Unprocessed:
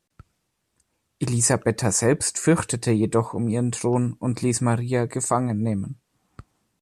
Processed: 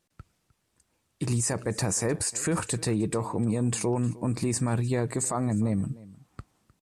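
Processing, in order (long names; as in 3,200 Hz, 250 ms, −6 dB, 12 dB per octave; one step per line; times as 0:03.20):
brickwall limiter −18.5 dBFS, peak gain reduction 11.5 dB
on a send: single-tap delay 306 ms −20 dB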